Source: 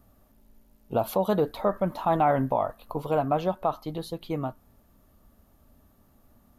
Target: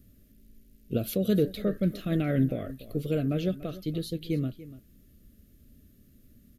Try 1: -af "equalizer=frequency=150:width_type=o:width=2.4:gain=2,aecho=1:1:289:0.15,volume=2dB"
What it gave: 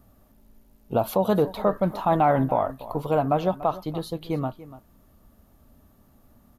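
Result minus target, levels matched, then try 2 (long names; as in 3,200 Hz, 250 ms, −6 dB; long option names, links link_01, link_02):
1,000 Hz band +19.0 dB
-af "asuperstop=centerf=910:order=4:qfactor=0.59,equalizer=frequency=150:width_type=o:width=2.4:gain=2,aecho=1:1:289:0.15,volume=2dB"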